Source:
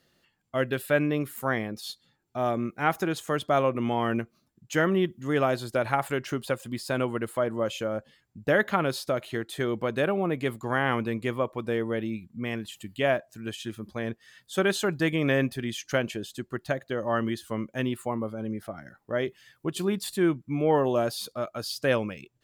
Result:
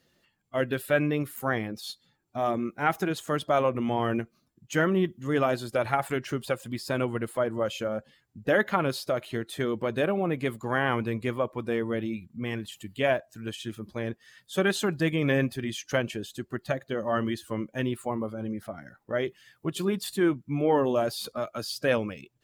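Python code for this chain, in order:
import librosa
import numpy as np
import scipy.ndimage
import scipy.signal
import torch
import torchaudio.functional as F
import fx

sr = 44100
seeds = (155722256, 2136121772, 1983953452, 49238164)

y = fx.spec_quant(x, sr, step_db=15)
y = fx.band_squash(y, sr, depth_pct=40, at=(21.24, 21.68))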